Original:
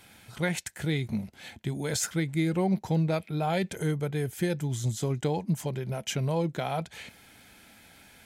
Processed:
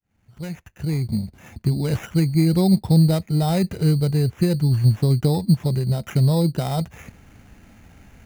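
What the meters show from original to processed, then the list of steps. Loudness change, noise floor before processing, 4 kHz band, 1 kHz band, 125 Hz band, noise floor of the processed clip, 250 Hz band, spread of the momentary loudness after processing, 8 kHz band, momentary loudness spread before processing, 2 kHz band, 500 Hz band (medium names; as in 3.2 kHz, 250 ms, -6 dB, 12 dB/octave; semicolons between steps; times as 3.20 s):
+10.0 dB, -56 dBFS, +5.0 dB, +2.0 dB, +12.0 dB, -62 dBFS, +10.0 dB, 12 LU, -2.0 dB, 8 LU, -2.5 dB, +4.5 dB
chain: fade-in on the opening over 1.68 s; RIAA curve playback; sample-and-hold 10×; trim +2 dB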